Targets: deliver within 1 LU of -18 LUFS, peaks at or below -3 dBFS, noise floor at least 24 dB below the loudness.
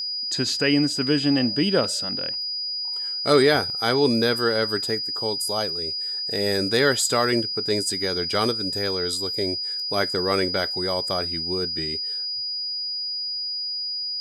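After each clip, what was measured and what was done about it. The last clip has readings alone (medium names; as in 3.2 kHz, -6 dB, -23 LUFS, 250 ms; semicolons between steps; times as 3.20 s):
steady tone 4.9 kHz; tone level -26 dBFS; loudness -22.5 LUFS; peak level -6.0 dBFS; loudness target -18.0 LUFS
-> band-stop 4.9 kHz, Q 30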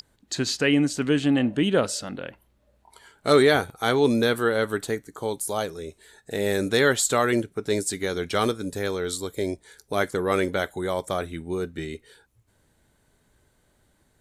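steady tone not found; loudness -24.5 LUFS; peak level -5.5 dBFS; loudness target -18.0 LUFS
-> trim +6.5 dB; peak limiter -3 dBFS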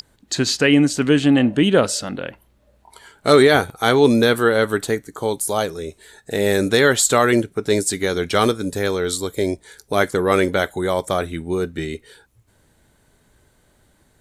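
loudness -18.5 LUFS; peak level -3.0 dBFS; noise floor -60 dBFS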